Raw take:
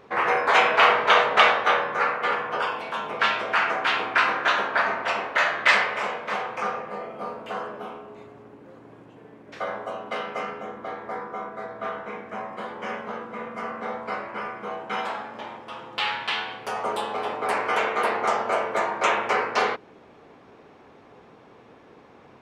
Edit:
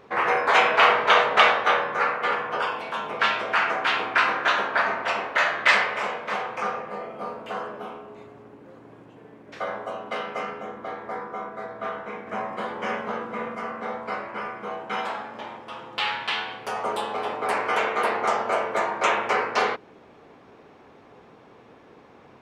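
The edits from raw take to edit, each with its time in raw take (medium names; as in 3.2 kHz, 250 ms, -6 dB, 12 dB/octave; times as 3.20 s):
12.27–13.55 s: gain +3.5 dB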